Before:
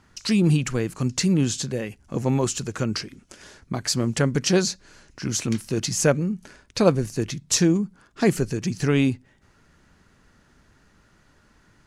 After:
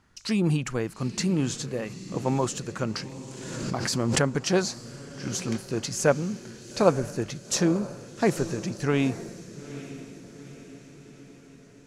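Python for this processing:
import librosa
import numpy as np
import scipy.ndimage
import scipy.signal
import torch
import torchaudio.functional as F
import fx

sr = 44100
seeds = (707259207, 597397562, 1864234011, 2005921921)

p1 = x + fx.echo_diffused(x, sr, ms=872, feedback_pct=55, wet_db=-13, dry=0)
p2 = fx.dynamic_eq(p1, sr, hz=890.0, q=0.74, threshold_db=-38.0, ratio=4.0, max_db=8)
p3 = fx.pre_swell(p2, sr, db_per_s=32.0, at=(2.95, 4.25))
y = p3 * librosa.db_to_amplitude(-6.0)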